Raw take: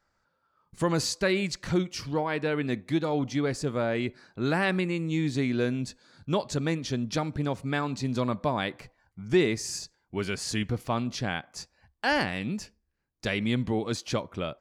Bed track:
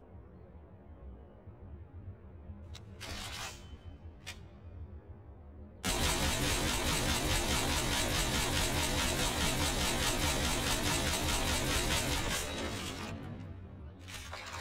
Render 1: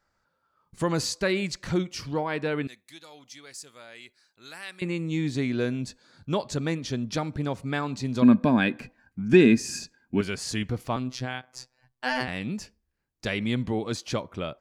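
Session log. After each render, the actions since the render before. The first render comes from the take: 2.67–4.82 pre-emphasis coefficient 0.97; 8.22–10.21 small resonant body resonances 240/1600/2500 Hz, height 17 dB; 10.96–12.28 robotiser 127 Hz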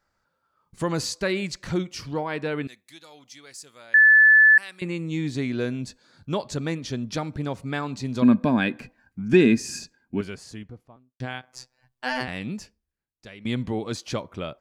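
3.94–4.58 bleep 1740 Hz -10.5 dBFS; 9.73–11.2 studio fade out; 12.52–13.45 fade out quadratic, to -15.5 dB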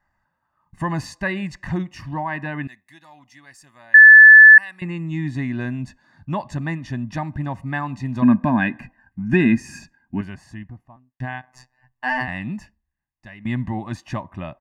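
resonant high shelf 2800 Hz -10 dB, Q 1.5; comb 1.1 ms, depth 93%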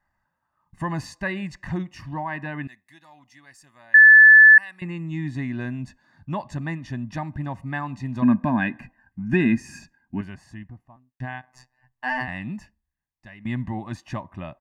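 gain -3.5 dB

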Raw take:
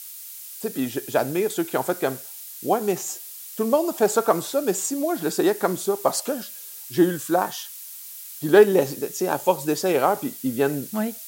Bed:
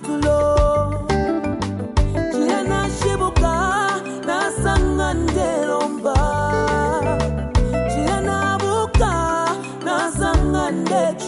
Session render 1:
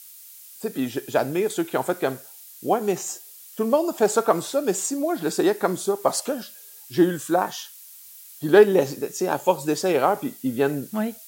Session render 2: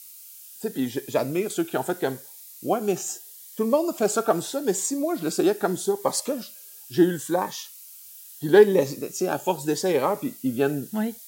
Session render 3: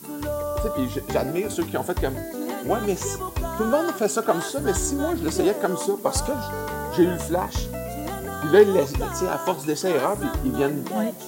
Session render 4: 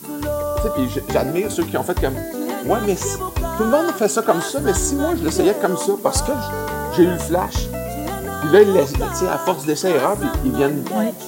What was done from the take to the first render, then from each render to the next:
noise print and reduce 6 dB
cascading phaser rising 0.78 Hz
add bed -11.5 dB
gain +5 dB; limiter -1 dBFS, peak gain reduction 2.5 dB

